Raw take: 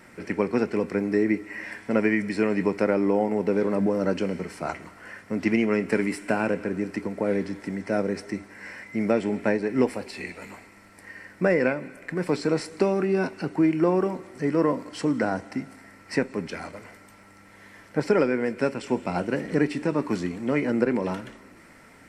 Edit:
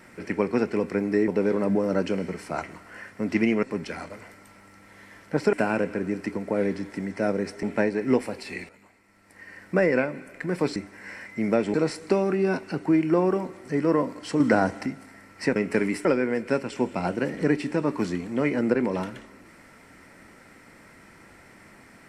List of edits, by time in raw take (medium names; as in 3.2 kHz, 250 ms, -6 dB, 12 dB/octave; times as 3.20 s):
1.28–3.39 s: delete
5.74–6.23 s: swap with 16.26–18.16 s
8.33–9.31 s: move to 12.44 s
10.37–11.31 s: fade in quadratic, from -14.5 dB
15.10–15.56 s: gain +5 dB